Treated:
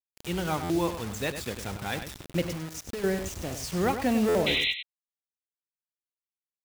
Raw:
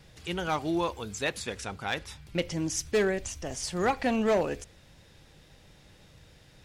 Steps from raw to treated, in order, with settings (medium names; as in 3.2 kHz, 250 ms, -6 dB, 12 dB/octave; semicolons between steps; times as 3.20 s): high-pass 53 Hz 12 dB/octave; bass shelf 340 Hz +9.5 dB; 2.47–3.04 s: compression 12:1, threshold -31 dBFS, peak gain reduction 14 dB; bit crusher 6-bit; 4.46–4.73 s: painted sound noise 1.9–4.1 kHz -24 dBFS; echo from a far wall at 17 m, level -9 dB; buffer glitch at 0.63/4.28 s, samples 512, times 5; trim -3 dB